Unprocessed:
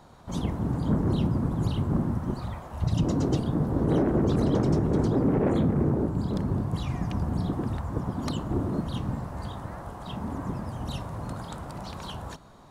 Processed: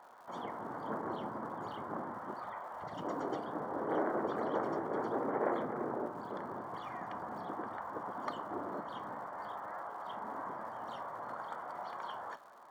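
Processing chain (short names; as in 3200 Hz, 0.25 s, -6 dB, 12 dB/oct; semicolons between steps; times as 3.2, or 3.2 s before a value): HPF 730 Hz 12 dB/oct; flange 0.17 Hz, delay 8.2 ms, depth 2.1 ms, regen +80%; polynomial smoothing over 41 samples; crackle 220/s -61 dBFS; gain +6 dB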